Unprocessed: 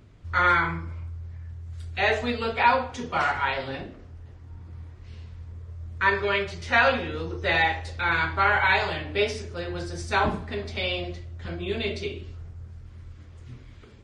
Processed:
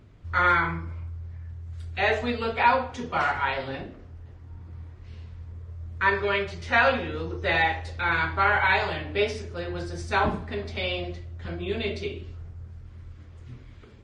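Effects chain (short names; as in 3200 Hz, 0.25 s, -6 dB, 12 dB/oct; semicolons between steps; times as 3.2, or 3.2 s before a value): high shelf 4300 Hz -5.5 dB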